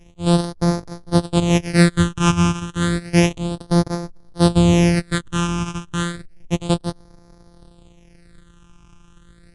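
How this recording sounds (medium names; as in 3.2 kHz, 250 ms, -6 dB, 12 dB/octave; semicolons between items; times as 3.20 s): a buzz of ramps at a fixed pitch in blocks of 256 samples; phasing stages 8, 0.31 Hz, lowest notch 570–2800 Hz; MP3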